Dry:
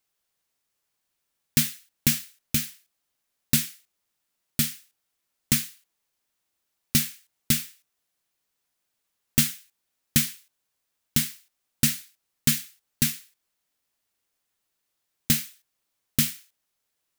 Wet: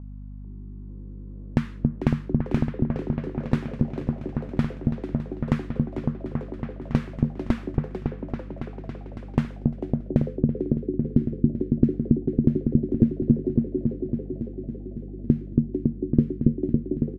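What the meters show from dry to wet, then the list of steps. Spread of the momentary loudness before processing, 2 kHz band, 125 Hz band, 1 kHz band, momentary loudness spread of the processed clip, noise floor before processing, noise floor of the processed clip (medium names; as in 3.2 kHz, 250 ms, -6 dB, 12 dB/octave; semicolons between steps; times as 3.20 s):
13 LU, -8.0 dB, +9.0 dB, +9.5 dB, 14 LU, -80 dBFS, -38 dBFS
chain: treble shelf 12 kHz +5.5 dB; compression, threshold -20 dBFS, peak gain reduction 8 dB; delay with an opening low-pass 278 ms, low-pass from 400 Hz, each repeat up 1 oct, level 0 dB; hum 50 Hz, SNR 14 dB; frequency-shifting echo 445 ms, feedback 37%, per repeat +140 Hz, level -12 dB; low-pass sweep 1 kHz -> 350 Hz, 9.30–10.99 s; trim +8 dB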